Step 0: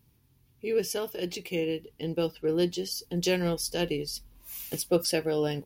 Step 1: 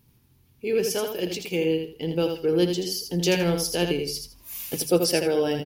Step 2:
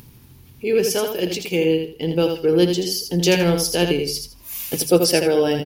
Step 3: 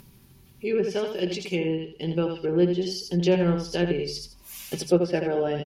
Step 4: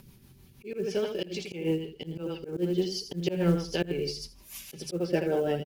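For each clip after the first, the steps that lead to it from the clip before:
mains-hum notches 50/100/150 Hz; repeating echo 81 ms, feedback 22%, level −6 dB; level +4 dB
upward compression, threshold −42 dBFS; level +5.5 dB
treble cut that deepens with the level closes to 1,800 Hz, closed at −13.5 dBFS; comb filter 5.2 ms, depth 44%; level −6 dB
rotating-speaker cabinet horn 6.3 Hz; floating-point word with a short mantissa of 4 bits; volume swells 163 ms

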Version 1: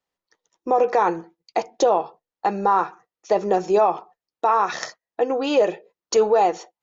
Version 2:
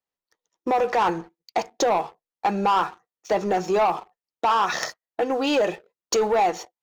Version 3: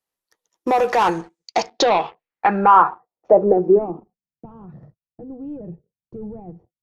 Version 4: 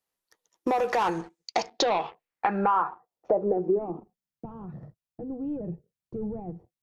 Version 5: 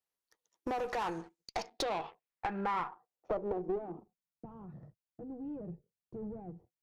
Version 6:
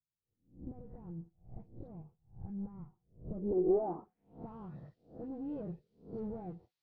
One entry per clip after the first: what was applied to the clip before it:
dynamic equaliser 440 Hz, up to −6 dB, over −28 dBFS, Q 1.1; leveller curve on the samples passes 2; level −4 dB
low-pass filter sweep 12,000 Hz → 140 Hz, 0:01.01–0:04.47; level +4 dB
downward compressor 3 to 1, threshold −25 dBFS, peak gain reduction 13 dB
one-sided soft clipper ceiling −25 dBFS; level −8 dB
peak hold with a rise ahead of every peak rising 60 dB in 0.37 s; all-pass dispersion highs, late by 64 ms, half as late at 1,700 Hz; low-pass filter sweep 140 Hz → 4,300 Hz, 0:03.25–0:04.46; level +1 dB

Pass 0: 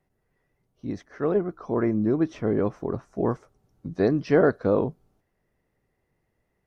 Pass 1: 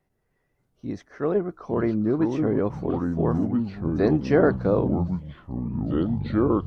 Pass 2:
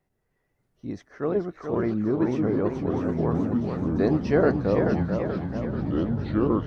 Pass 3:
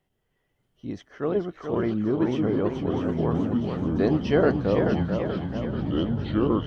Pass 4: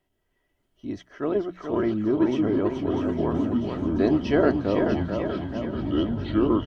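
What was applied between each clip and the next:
delay with pitch and tempo change per echo 585 ms, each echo −5 semitones, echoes 3
delay with a high-pass on its return 648 ms, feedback 48%, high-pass 2,200 Hz, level −6 dB; feedback echo with a swinging delay time 436 ms, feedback 56%, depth 162 cents, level −6 dB; level −2 dB
parametric band 3,100 Hz +14.5 dB 0.25 octaves
mains-hum notches 60/120/180 Hz; comb filter 3.1 ms, depth 43%

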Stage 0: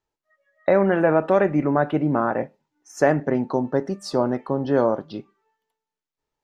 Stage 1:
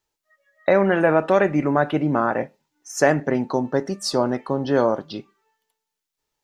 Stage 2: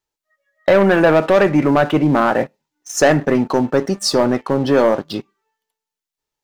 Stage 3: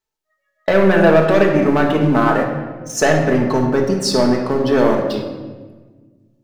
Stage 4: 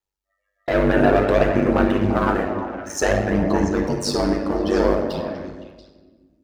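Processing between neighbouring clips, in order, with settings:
high-shelf EQ 2,300 Hz +10.5 dB
leveller curve on the samples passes 2
rectangular room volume 1,300 cubic metres, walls mixed, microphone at 1.5 metres; level −2.5 dB
ring modulation 49 Hz; phase shifter 0.56 Hz, delay 3.7 ms, feedback 29%; echo through a band-pass that steps 171 ms, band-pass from 290 Hz, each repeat 1.4 octaves, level −4 dB; level −3 dB

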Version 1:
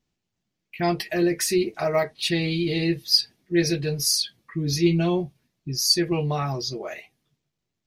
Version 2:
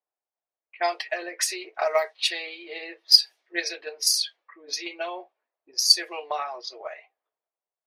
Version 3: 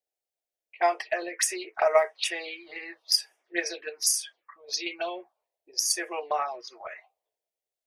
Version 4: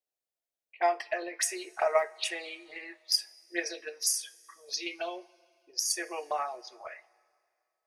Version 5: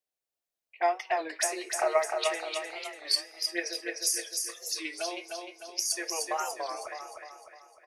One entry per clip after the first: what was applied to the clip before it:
inverse Chebyshev high-pass filter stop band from 170 Hz, stop band 60 dB; transient designer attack +7 dB, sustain +3 dB; low-pass that shuts in the quiet parts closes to 940 Hz, open at −16.5 dBFS; level −2 dB
phaser swept by the level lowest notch 190 Hz, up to 4,200 Hz, full sweep at −24.5 dBFS; level +2.5 dB
coupled-rooms reverb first 0.24 s, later 2.3 s, from −19 dB, DRR 13.5 dB; level −4 dB
on a send: repeating echo 304 ms, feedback 48%, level −4.5 dB; on the sum: wow of a warped record 33 1/3 rpm, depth 160 cents

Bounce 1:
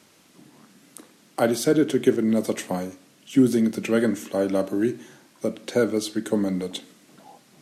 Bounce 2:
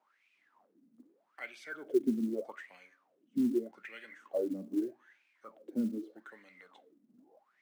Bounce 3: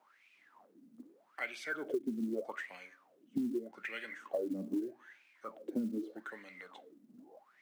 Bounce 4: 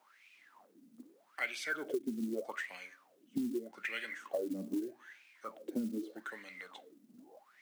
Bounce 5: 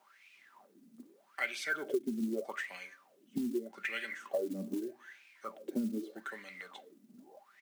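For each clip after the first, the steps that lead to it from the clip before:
LFO wah 0.81 Hz 220–2,500 Hz, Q 11; floating-point word with a short mantissa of 4 bits; low-shelf EQ 210 Hz −3 dB
downward compressor 12 to 1, threshold −38 dBFS, peak gain reduction 16.5 dB; level +6 dB
high-shelf EQ 2,100 Hz +8.5 dB; level −1 dB
comb filter 5.1 ms, depth 34%; level +1 dB

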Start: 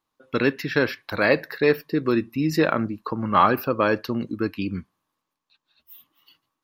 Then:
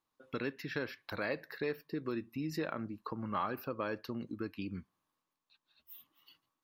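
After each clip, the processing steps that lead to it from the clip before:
downward compressor 2 to 1, threshold −36 dBFS, peak gain reduction 13 dB
level −6 dB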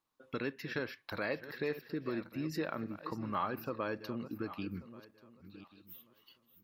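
feedback delay that plays each chunk backwards 568 ms, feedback 40%, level −13 dB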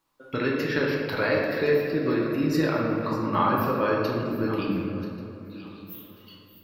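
convolution reverb RT60 2.5 s, pre-delay 3 ms, DRR −3 dB
level +8 dB

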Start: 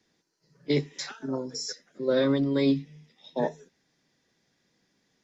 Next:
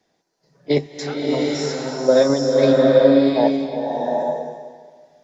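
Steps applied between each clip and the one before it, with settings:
in parallel at −3 dB: output level in coarse steps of 23 dB
on the sum: parametric band 690 Hz +13 dB 0.85 octaves
slow-attack reverb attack 780 ms, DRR −3 dB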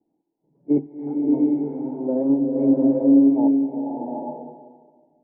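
in parallel at −6.5 dB: soft clipping −14.5 dBFS, distortion −10 dB
on the sum: formant resonators in series u
level +2.5 dB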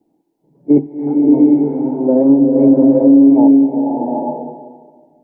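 boost into a limiter +11.5 dB
level −1 dB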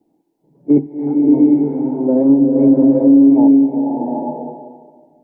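dynamic equaliser 640 Hz, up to −4 dB, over −23 dBFS, Q 0.95

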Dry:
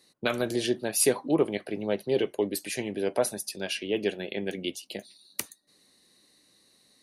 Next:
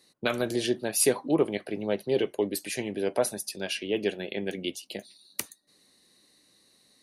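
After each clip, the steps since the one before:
no processing that can be heard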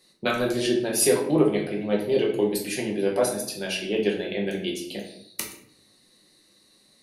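rectangular room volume 130 cubic metres, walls mixed, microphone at 0.98 metres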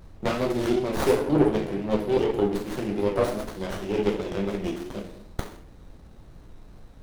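background noise brown −44 dBFS
pitch vibrato 2.7 Hz 66 cents
windowed peak hold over 17 samples

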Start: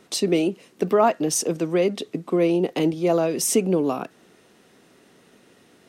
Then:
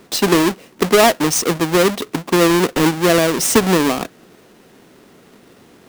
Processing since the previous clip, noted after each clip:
each half-wave held at its own peak
level +3 dB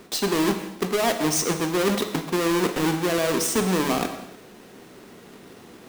reversed playback
downward compressor 6 to 1, threshold −22 dBFS, peak gain reduction 13.5 dB
reversed playback
reverb whose tail is shaped and stops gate 340 ms falling, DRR 6 dB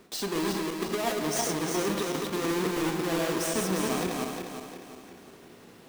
feedback delay that plays each chunk backwards 177 ms, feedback 64%, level −2 dB
level −8.5 dB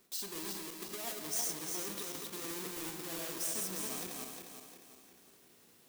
first-order pre-emphasis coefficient 0.8
level −3 dB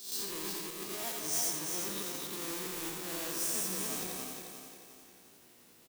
peak hold with a rise ahead of every peak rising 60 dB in 0.56 s
on a send: single-tap delay 86 ms −5 dB

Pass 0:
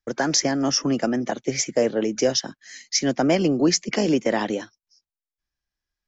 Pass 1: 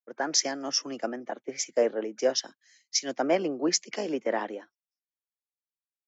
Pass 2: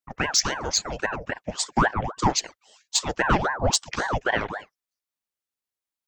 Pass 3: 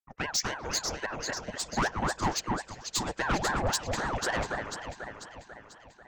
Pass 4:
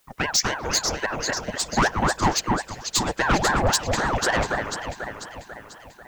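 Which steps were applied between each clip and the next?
high-pass filter 370 Hz 12 dB per octave; high-shelf EQ 4,200 Hz −5.5 dB; multiband upward and downward expander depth 100%; level −5.5 dB
soft clipping −14 dBFS, distortion −21 dB; ring modulator whose carrier an LFO sweeps 770 Hz, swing 75%, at 3.7 Hz; level +7.5 dB
delay that swaps between a low-pass and a high-pass 246 ms, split 2,200 Hz, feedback 75%, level −4 dB; soft clipping −18 dBFS, distortion −12 dB; expander for the loud parts 1.5 to 1, over −39 dBFS; level −3 dB
bit-depth reduction 12 bits, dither triangular; level +8 dB

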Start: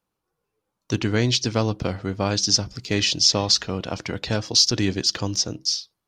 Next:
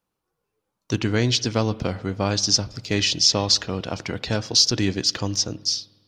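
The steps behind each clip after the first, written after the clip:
spring reverb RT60 1.5 s, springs 50 ms, chirp 70 ms, DRR 19 dB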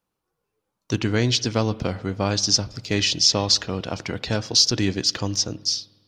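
no processing that can be heard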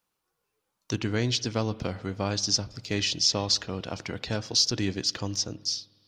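one half of a high-frequency compander encoder only
level −6 dB

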